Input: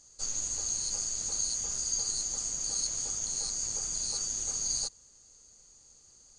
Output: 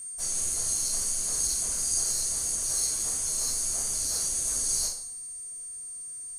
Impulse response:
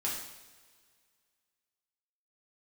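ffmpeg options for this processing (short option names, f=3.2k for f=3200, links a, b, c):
-filter_complex "[0:a]asplit=3[a][b][c];[b]asetrate=55563,aresample=44100,atempo=0.793701,volume=-2dB[d];[c]asetrate=66075,aresample=44100,atempo=0.66742,volume=-1dB[e];[a][d][e]amix=inputs=3:normalize=0,aeval=exprs='val(0)+0.02*sin(2*PI*8700*n/s)':c=same[f];[1:a]atrim=start_sample=2205,asetrate=74970,aresample=44100[g];[f][g]afir=irnorm=-1:irlink=0,volume=1.5dB"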